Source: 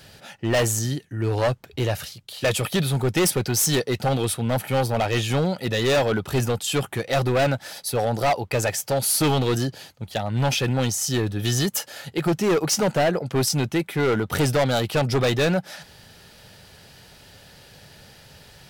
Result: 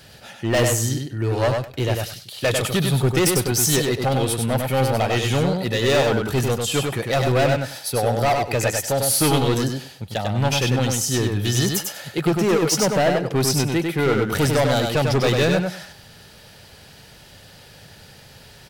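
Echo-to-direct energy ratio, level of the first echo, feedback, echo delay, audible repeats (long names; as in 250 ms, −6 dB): −4.0 dB, −4.0 dB, 17%, 98 ms, 3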